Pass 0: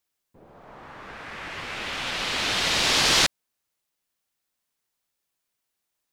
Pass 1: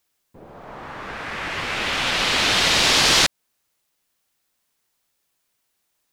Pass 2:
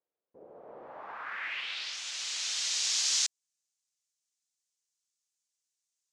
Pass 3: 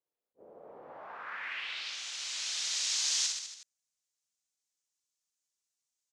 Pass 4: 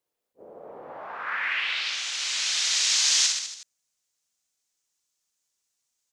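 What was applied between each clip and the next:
downward compressor 2 to 1, threshold −24 dBFS, peak gain reduction 5 dB; level +8 dB
low-pass filter 9,600 Hz 12 dB per octave; band-pass filter sweep 490 Hz → 6,700 Hz, 0:00.82–0:02.00; level −4 dB
on a send: reverse bouncing-ball delay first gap 60 ms, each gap 1.1×, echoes 5; on the sum: level that may rise only so fast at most 530 dB per second; level −4 dB
dynamic equaliser 1,900 Hz, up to +4 dB, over −45 dBFS, Q 0.77; level +8 dB

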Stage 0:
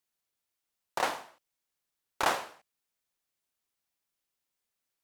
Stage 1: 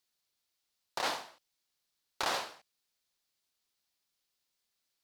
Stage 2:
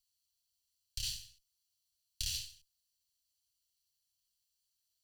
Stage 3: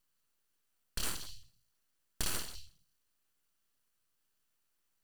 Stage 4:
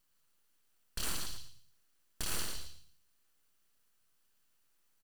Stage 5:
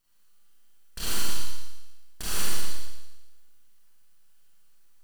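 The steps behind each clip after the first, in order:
parametric band 4,400 Hz +8.5 dB 1 octave; brickwall limiter −20.5 dBFS, peak gain reduction 9.5 dB
lower of the sound and its delayed copy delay 0.67 ms; inverse Chebyshev band-stop filter 380–920 Hz, stop band 80 dB; level +2 dB
convolution reverb RT60 0.40 s, pre-delay 155 ms, DRR 14.5 dB; full-wave rectification; level +4.5 dB
brickwall limiter −27 dBFS, peak gain reduction 8 dB; repeating echo 112 ms, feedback 24%, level −7 dB; level +3.5 dB
four-comb reverb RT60 1.1 s, combs from 32 ms, DRR −7 dB

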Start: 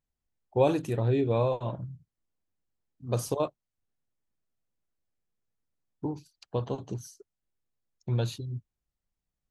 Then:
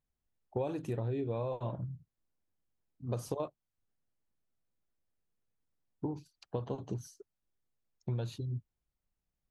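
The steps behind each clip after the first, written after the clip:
high-shelf EQ 2,600 Hz −6.5 dB
downward compressor 6 to 1, threshold −32 dBFS, peak gain reduction 13 dB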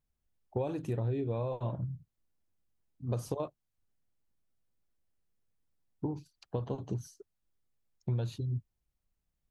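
low-shelf EQ 170 Hz +5 dB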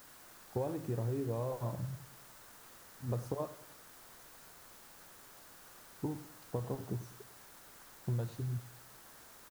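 bit-depth reduction 8 bits, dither triangular
high shelf with overshoot 1,900 Hz −6.5 dB, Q 1.5
repeating echo 98 ms, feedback 45%, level −15.5 dB
level −3 dB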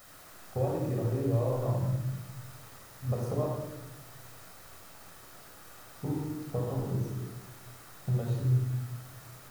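rectangular room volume 3,700 cubic metres, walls furnished, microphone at 6.4 metres

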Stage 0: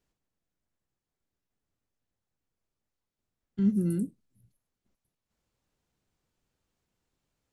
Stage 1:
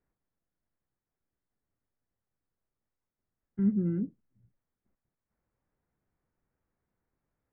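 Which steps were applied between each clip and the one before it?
Butterworth low-pass 2,100 Hz 36 dB per octave
level −1.5 dB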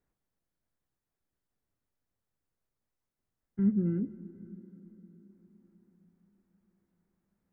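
convolution reverb RT60 5.2 s, pre-delay 118 ms, DRR 15.5 dB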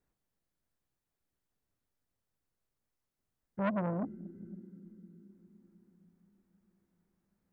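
saturating transformer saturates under 980 Hz

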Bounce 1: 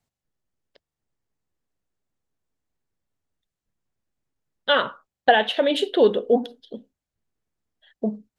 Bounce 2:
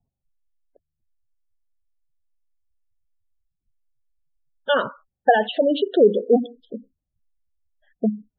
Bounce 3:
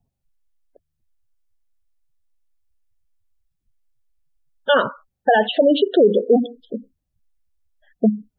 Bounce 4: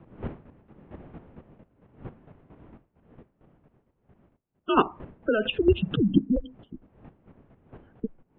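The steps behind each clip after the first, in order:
low-pass that shuts in the quiet parts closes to 1,600 Hz, open at −17 dBFS; gate on every frequency bin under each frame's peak −15 dB strong; spectral tilt −2 dB per octave
brickwall limiter −11 dBFS, peak gain reduction 7 dB; level +5 dB
wind on the microphone 190 Hz −31 dBFS; single-sideband voice off tune −220 Hz 350–3,400 Hz; square-wave tremolo 4.4 Hz, depth 65%, duty 20%

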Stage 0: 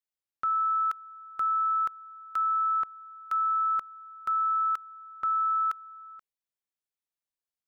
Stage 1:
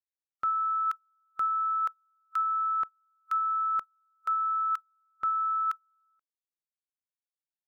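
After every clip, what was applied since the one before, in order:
noise reduction from a noise print of the clip's start 25 dB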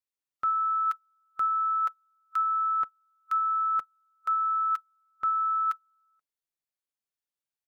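comb filter 7 ms, depth 31%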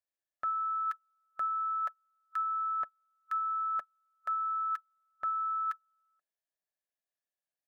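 hollow resonant body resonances 640/1,700 Hz, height 14 dB, ringing for 20 ms
level −7 dB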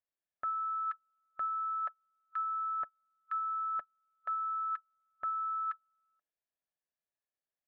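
high-frequency loss of the air 380 metres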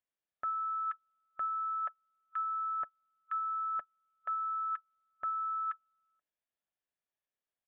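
downsampling to 8,000 Hz

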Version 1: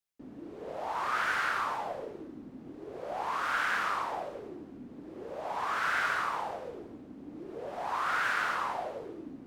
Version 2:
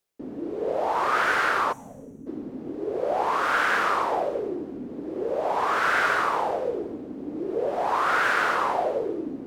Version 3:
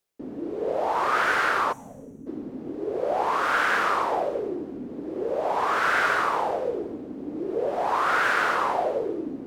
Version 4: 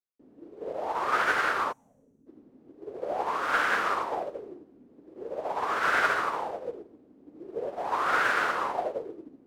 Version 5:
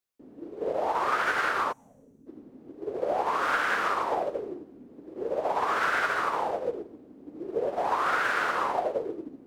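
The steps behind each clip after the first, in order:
parametric band 440 Hz +9.5 dB 1.4 octaves; reversed playback; upward compression, threshold −47 dBFS; reversed playback; gain on a spectral selection 0:01.72–0:02.27, 290–5,600 Hz −21 dB; level +6 dB
no processing that can be heard
expander for the loud parts 2.5 to 1, over −34 dBFS
downward compressor 6 to 1, threshold −30 dBFS, peak gain reduction 10.5 dB; level +6.5 dB

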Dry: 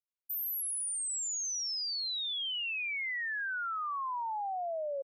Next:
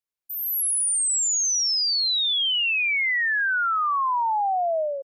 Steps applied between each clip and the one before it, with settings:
automatic gain control gain up to 11 dB
level +1.5 dB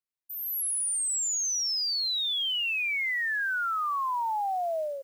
noise that follows the level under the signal 30 dB
level −6 dB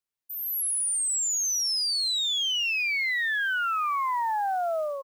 single-tap delay 1,003 ms −15.5 dB
level +2 dB

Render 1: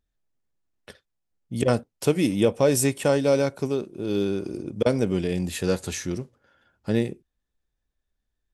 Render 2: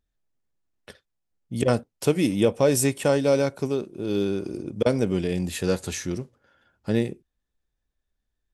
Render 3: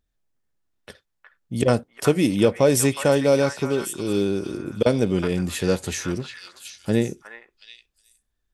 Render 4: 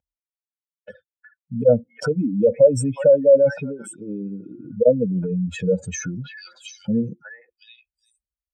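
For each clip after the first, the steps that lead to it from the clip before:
no processing that can be heard
echo through a band-pass that steps 365 ms, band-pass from 1,400 Hz, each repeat 1.4 octaves, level −2 dB; level +2.5 dB
expanding power law on the bin magnitudes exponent 2.8; loudspeaker in its box 150–6,900 Hz, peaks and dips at 330 Hz −3 dB, 500 Hz +8 dB, 1,100 Hz −7 dB, 4,100 Hz −9 dB; comb filter 1.3 ms, depth 97%

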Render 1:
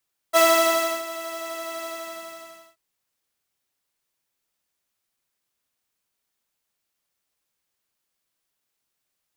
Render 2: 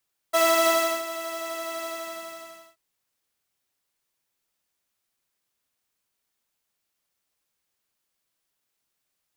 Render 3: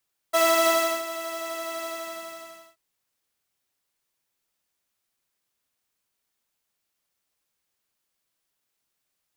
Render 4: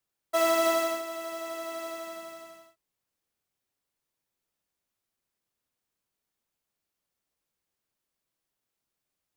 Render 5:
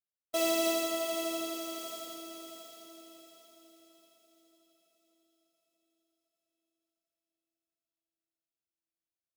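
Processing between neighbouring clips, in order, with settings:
brickwall limiter −11 dBFS, peak gain reduction 5 dB
no processing that can be heard
tilt shelving filter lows +3.5 dB, about 850 Hz; level −3.5 dB
noise gate −39 dBFS, range −18 dB; flat-topped bell 1,200 Hz −12 dB; feedback delay with all-pass diffusion 593 ms, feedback 47%, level −6 dB

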